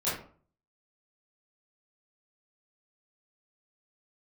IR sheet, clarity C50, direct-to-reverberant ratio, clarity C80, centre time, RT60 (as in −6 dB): 3.0 dB, −11.5 dB, 8.5 dB, 47 ms, 0.45 s